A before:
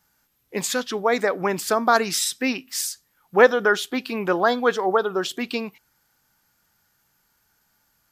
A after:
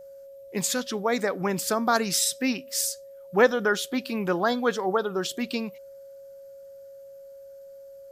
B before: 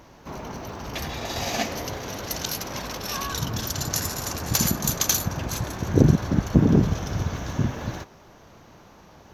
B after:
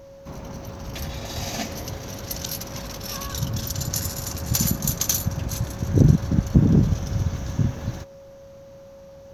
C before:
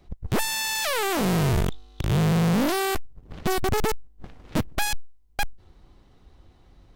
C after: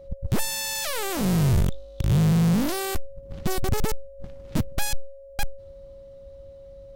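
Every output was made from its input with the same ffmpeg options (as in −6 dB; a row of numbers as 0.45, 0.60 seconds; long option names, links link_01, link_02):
-af "bass=frequency=250:gain=9,treble=frequency=4000:gain=6,aeval=exprs='val(0)+0.0141*sin(2*PI*550*n/s)':channel_layout=same,volume=-5.5dB"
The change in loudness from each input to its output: −3.5, +0.5, 0.0 LU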